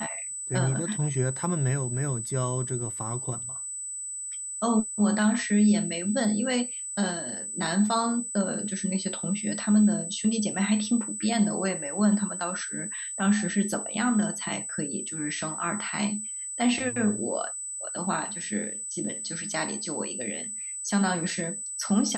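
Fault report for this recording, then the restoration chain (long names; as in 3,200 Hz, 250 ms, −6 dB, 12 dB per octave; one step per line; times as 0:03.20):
whistle 8,000 Hz −33 dBFS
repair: notch filter 8,000 Hz, Q 30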